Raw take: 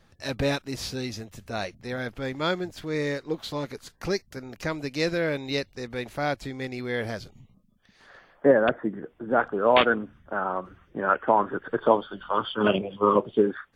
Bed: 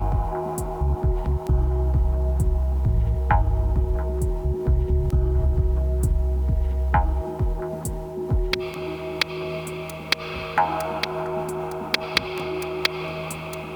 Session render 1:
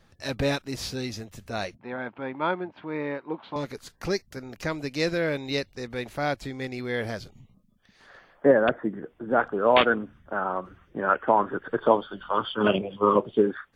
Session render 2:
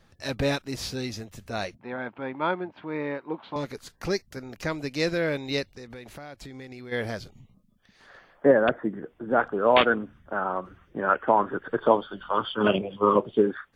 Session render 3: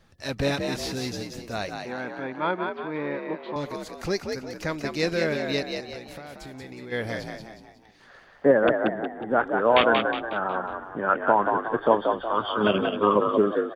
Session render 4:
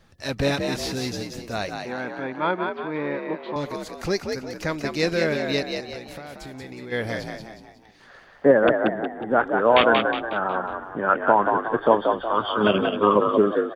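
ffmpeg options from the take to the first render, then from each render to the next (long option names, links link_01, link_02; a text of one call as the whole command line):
ffmpeg -i in.wav -filter_complex "[0:a]asettb=1/sr,asplit=3[link_01][link_02][link_03];[link_01]atrim=end=1.764[link_04];[link_02]atrim=start=1.76:end=3.56,asetpts=PTS-STARTPTS,afade=type=in:duration=0.004:curve=qsin,afade=type=out:start_time=1.796:duration=0.004:curve=qsin,highpass=210,equalizer=frequency=460:width_type=q:width=4:gain=-5,equalizer=frequency=930:width_type=q:width=4:gain=9,equalizer=frequency=1900:width_type=q:width=4:gain=-5,lowpass=frequency=2600:width=0.5412,lowpass=frequency=2600:width=1.3066[link_05];[link_03]atrim=start=3.556[link_06];[link_04][link_05]acrossfade=duration=0.004:curve1=hsin:curve2=qsin[link_07];[link_07][link_06]acrossfade=duration=0.004:curve1=qsin:curve2=hsin" out.wav
ffmpeg -i in.wav -filter_complex "[0:a]asplit=3[link_01][link_02][link_03];[link_01]afade=type=out:start_time=5.7:duration=0.02[link_04];[link_02]acompressor=threshold=-38dB:ratio=8:attack=3.2:release=140:knee=1:detection=peak,afade=type=in:start_time=5.7:duration=0.02,afade=type=out:start_time=6.91:duration=0.02[link_05];[link_03]afade=type=in:start_time=6.91:duration=0.02[link_06];[link_04][link_05][link_06]amix=inputs=3:normalize=0" out.wav
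ffmpeg -i in.wav -filter_complex "[0:a]asplit=6[link_01][link_02][link_03][link_04][link_05][link_06];[link_02]adelay=182,afreqshift=54,volume=-5dB[link_07];[link_03]adelay=364,afreqshift=108,volume=-12.5dB[link_08];[link_04]adelay=546,afreqshift=162,volume=-20.1dB[link_09];[link_05]adelay=728,afreqshift=216,volume=-27.6dB[link_10];[link_06]adelay=910,afreqshift=270,volume=-35.1dB[link_11];[link_01][link_07][link_08][link_09][link_10][link_11]amix=inputs=6:normalize=0" out.wav
ffmpeg -i in.wav -af "volume=2.5dB,alimiter=limit=-2dB:level=0:latency=1" out.wav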